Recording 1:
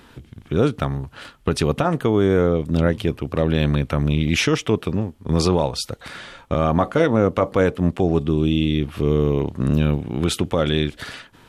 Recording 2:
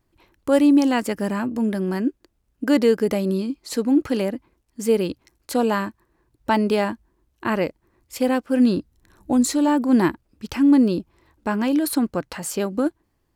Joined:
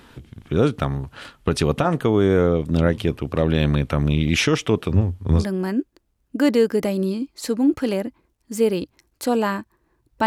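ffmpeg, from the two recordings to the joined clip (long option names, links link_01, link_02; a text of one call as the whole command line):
ffmpeg -i cue0.wav -i cue1.wav -filter_complex "[0:a]asettb=1/sr,asplit=3[link_01][link_02][link_03];[link_01]atrim=end=4.904[link_04];[link_02]atrim=start=4.9:end=5.46,asetpts=PTS-STARTPTS,afade=type=in:duration=0.004:curve=qsin,afade=type=out:start_time=0.556:duration=0.004:curve=qsin,equalizer=frequency=90:width=3.9:gain=15[link_05];[link_03]atrim=start=5.456[link_06];[link_04][link_05]acrossfade=duration=0.004:curve1=hsin:curve2=qsin[link_07];[link_07][link_06]acrossfade=duration=0.004:curve1=qsin:curve2=hsin,apad=whole_dur=10.26,atrim=end=10.26,atrim=end=5.46,asetpts=PTS-STARTPTS[link_08];[1:a]atrim=start=1.6:end=6.54,asetpts=PTS-STARTPTS[link_09];[link_08][link_09]acrossfade=duration=0.14:curve1=tri:curve2=tri" out.wav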